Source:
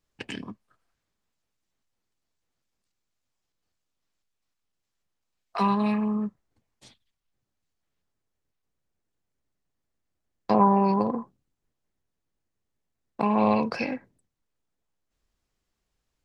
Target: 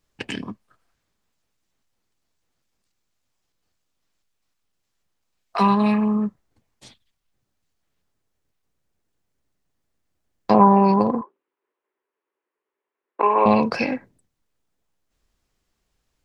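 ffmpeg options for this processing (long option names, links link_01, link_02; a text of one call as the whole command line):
ffmpeg -i in.wav -filter_complex "[0:a]asettb=1/sr,asplit=3[link_01][link_02][link_03];[link_01]atrim=end=11.214[link_04];[link_02]atrim=start=11.21:end=13.46,asetpts=PTS-STARTPTS,afade=type=in:duration=0.004:curve=qsin,afade=type=out:start_time=2.246:duration=0.004:curve=qsin,highpass=frequency=380:width=0.5412,highpass=frequency=380:width=1.3066,equalizer=frequency=390:width_type=q:width=4:gain=8,equalizer=frequency=710:width_type=q:width=4:gain=-7,equalizer=frequency=1000:width_type=q:width=4:gain=6,lowpass=frequency=2600:width=0.5412,lowpass=frequency=2600:width=1.3066[link_05];[link_03]atrim=start=13.456[link_06];[link_04][link_05]acrossfade=duration=0.004:curve1=hsin:curve2=qsin[link_07];[link_07][link_06]acrossfade=duration=0.004:curve1=qsin:curve2=hsin,volume=6dB" out.wav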